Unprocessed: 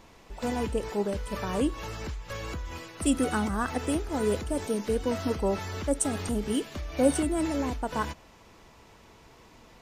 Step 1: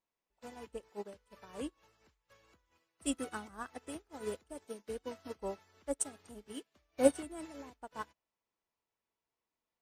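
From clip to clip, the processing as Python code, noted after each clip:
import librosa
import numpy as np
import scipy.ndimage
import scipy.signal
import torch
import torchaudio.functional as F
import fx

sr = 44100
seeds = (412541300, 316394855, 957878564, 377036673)

y = fx.low_shelf(x, sr, hz=220.0, db=-11.0)
y = fx.upward_expand(y, sr, threshold_db=-45.0, expansion=2.5)
y = y * librosa.db_to_amplitude(1.0)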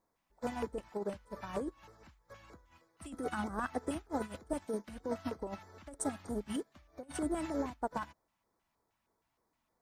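y = fx.high_shelf(x, sr, hz=2300.0, db=-9.5)
y = fx.over_compress(y, sr, threshold_db=-45.0, ratio=-1.0)
y = fx.filter_lfo_notch(y, sr, shape='square', hz=3.2, low_hz=440.0, high_hz=2800.0, q=0.91)
y = y * librosa.db_to_amplitude(8.5)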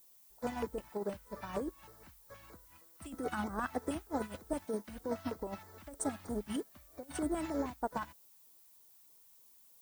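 y = fx.dmg_noise_colour(x, sr, seeds[0], colour='violet', level_db=-62.0)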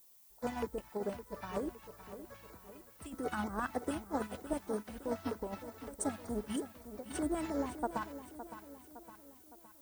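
y = fx.echo_feedback(x, sr, ms=562, feedback_pct=51, wet_db=-12.0)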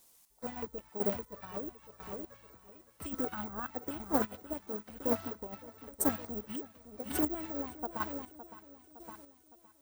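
y = fx.chopper(x, sr, hz=1.0, depth_pct=65, duty_pct=25)
y = (np.kron(scipy.signal.resample_poly(y, 1, 2), np.eye(2)[0]) * 2)[:len(y)]
y = fx.doppler_dist(y, sr, depth_ms=0.22)
y = y * librosa.db_to_amplitude(5.0)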